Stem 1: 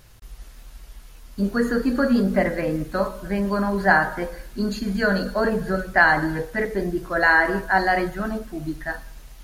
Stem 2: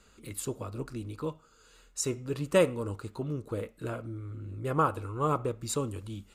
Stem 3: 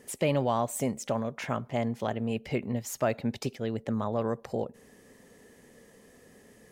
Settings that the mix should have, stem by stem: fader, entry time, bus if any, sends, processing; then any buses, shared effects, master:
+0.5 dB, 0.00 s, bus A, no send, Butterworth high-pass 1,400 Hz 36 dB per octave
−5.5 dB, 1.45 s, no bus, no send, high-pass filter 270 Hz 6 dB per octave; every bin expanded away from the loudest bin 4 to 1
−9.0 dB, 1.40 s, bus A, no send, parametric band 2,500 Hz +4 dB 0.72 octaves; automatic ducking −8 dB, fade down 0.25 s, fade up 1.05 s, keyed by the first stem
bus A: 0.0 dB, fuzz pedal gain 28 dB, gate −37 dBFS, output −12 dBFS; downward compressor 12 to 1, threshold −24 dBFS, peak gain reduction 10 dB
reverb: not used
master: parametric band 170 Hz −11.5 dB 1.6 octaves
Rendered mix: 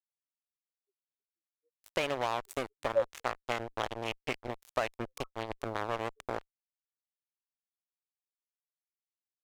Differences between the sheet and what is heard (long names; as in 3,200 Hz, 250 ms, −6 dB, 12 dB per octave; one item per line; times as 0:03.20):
stem 1: muted
stem 2: entry 1.45 s → 0.40 s
stem 3: entry 1.40 s → 1.75 s